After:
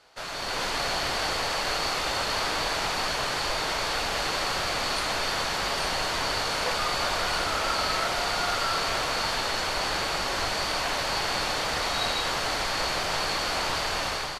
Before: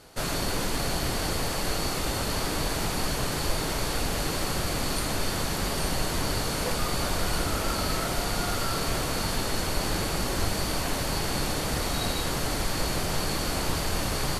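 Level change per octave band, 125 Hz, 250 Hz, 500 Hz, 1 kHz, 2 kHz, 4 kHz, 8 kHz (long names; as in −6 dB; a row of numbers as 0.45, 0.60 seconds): −9.5, −7.5, 0.0, +4.5, +5.0, +4.0, −2.5 decibels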